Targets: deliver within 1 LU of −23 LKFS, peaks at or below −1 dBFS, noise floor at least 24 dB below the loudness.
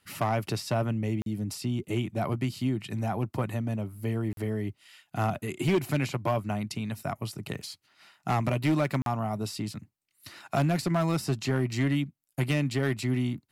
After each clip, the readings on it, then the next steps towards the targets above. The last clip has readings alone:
share of clipped samples 1.1%; peaks flattened at −19.5 dBFS; number of dropouts 3; longest dropout 42 ms; integrated loudness −30.0 LKFS; sample peak −19.5 dBFS; target loudness −23.0 LKFS
→ clipped peaks rebuilt −19.5 dBFS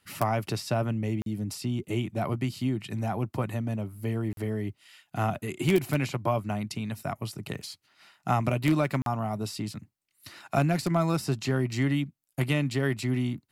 share of clipped samples 0.0%; number of dropouts 3; longest dropout 42 ms
→ repair the gap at 0:01.22/0:04.33/0:09.02, 42 ms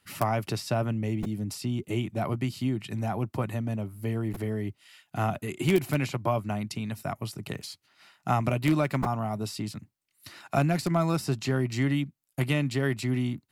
number of dropouts 0; integrated loudness −29.5 LKFS; sample peak −10.5 dBFS; target loudness −23.0 LKFS
→ level +6.5 dB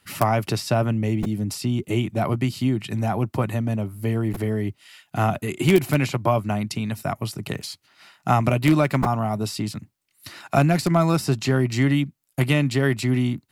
integrated loudness −23.0 LKFS; sample peak −4.0 dBFS; background noise floor −67 dBFS

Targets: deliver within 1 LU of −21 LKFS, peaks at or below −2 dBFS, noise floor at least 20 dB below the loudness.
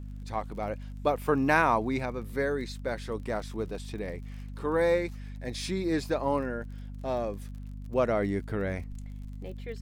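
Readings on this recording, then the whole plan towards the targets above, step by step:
crackle rate 38 per second; mains hum 50 Hz; hum harmonics up to 250 Hz; level of the hum −38 dBFS; integrated loudness −30.5 LKFS; sample peak −9.0 dBFS; target loudness −21.0 LKFS
→ click removal
hum removal 50 Hz, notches 5
level +9.5 dB
brickwall limiter −2 dBFS

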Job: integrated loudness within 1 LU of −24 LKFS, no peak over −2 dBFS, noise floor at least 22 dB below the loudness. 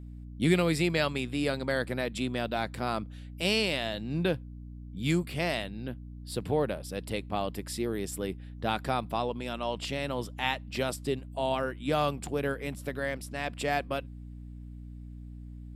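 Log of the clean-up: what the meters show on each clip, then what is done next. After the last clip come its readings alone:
mains hum 60 Hz; hum harmonics up to 300 Hz; level of the hum −41 dBFS; integrated loudness −31.5 LKFS; sample peak −12.5 dBFS; target loudness −24.0 LKFS
→ hum removal 60 Hz, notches 5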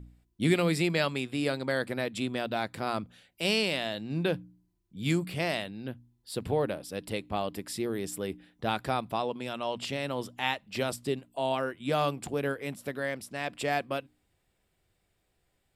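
mains hum none found; integrated loudness −31.5 LKFS; sample peak −13.0 dBFS; target loudness −24.0 LKFS
→ level +7.5 dB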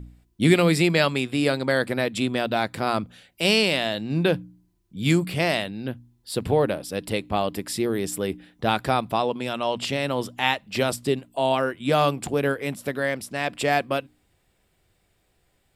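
integrated loudness −24.0 LKFS; sample peak −5.5 dBFS; background noise floor −68 dBFS

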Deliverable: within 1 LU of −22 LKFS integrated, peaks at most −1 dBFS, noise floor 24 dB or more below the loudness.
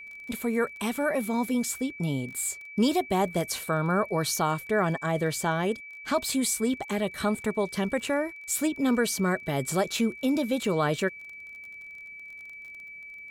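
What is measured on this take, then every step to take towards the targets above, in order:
crackle rate 25 per second; interfering tone 2,300 Hz; level of the tone −41 dBFS; integrated loudness −27.5 LKFS; sample peak −13.5 dBFS; target loudness −22.0 LKFS
→ click removal
notch filter 2,300 Hz, Q 30
level +5.5 dB

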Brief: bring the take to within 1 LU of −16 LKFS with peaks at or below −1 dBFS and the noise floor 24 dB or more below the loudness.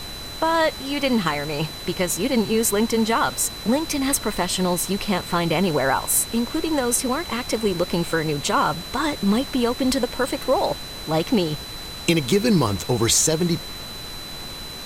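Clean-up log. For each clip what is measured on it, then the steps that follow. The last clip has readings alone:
interfering tone 4,000 Hz; level of the tone −35 dBFS; background noise floor −35 dBFS; target noise floor −46 dBFS; integrated loudness −21.5 LKFS; sample peak −5.0 dBFS; target loudness −16.0 LKFS
→ notch filter 4,000 Hz, Q 30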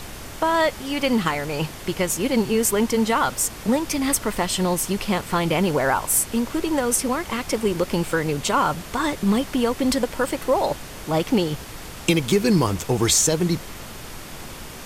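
interfering tone none found; background noise floor −37 dBFS; target noise floor −46 dBFS
→ noise reduction from a noise print 9 dB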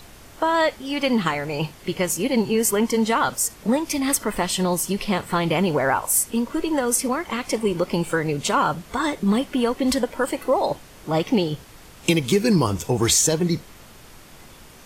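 background noise floor −46 dBFS; integrated loudness −22.0 LKFS; sample peak −5.0 dBFS; target loudness −16.0 LKFS
→ level +6 dB
brickwall limiter −1 dBFS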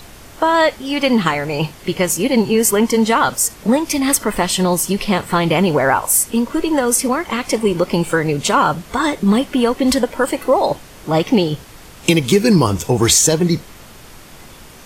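integrated loudness −16.0 LKFS; sample peak −1.0 dBFS; background noise floor −40 dBFS

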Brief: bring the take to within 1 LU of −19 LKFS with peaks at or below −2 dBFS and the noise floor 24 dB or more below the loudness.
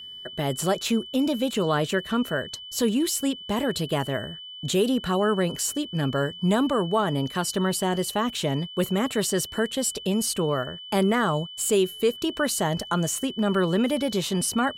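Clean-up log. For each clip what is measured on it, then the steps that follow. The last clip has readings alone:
interfering tone 3,000 Hz; level of the tone −38 dBFS; integrated loudness −25.0 LKFS; sample peak −11.5 dBFS; target loudness −19.0 LKFS
→ notch filter 3,000 Hz, Q 30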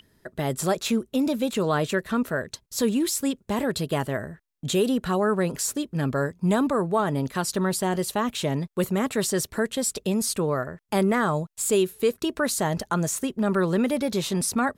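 interfering tone none found; integrated loudness −25.5 LKFS; sample peak −11.5 dBFS; target loudness −19.0 LKFS
→ level +6.5 dB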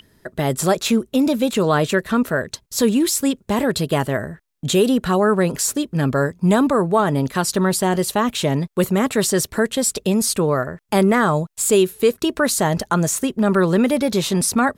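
integrated loudness −19.0 LKFS; sample peak −5.0 dBFS; background noise floor −60 dBFS

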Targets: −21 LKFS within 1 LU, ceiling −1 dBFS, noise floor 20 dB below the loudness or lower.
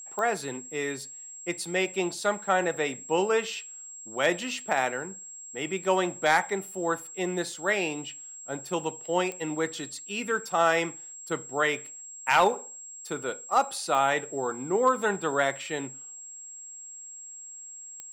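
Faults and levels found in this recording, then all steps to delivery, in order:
number of clicks 4; interfering tone 7,600 Hz; level of the tone −41 dBFS; integrated loudness −28.0 LKFS; sample peak −11.5 dBFS; target loudness −21.0 LKFS
→ click removal
notch filter 7,600 Hz, Q 30
level +7 dB

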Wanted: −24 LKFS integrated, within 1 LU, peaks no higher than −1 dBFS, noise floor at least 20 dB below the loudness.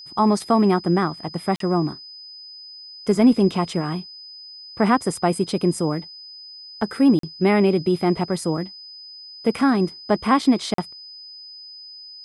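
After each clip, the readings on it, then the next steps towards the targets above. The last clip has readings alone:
number of dropouts 3; longest dropout 43 ms; interfering tone 5,000 Hz; level of the tone −38 dBFS; integrated loudness −21.0 LKFS; sample peak −6.0 dBFS; target loudness −24.0 LKFS
→ repair the gap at 0:01.56/0:07.19/0:10.74, 43 ms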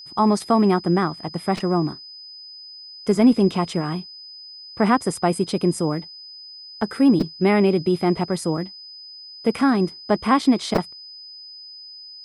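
number of dropouts 0; interfering tone 5,000 Hz; level of the tone −38 dBFS
→ notch filter 5,000 Hz, Q 30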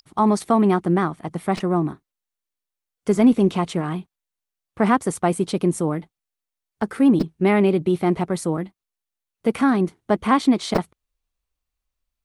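interfering tone none found; integrated loudness −21.0 LKFS; sample peak −5.0 dBFS; target loudness −24.0 LKFS
→ level −3 dB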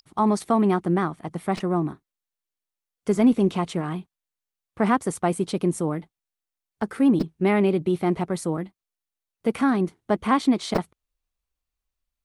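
integrated loudness −24.0 LKFS; sample peak −8.0 dBFS; background noise floor −88 dBFS

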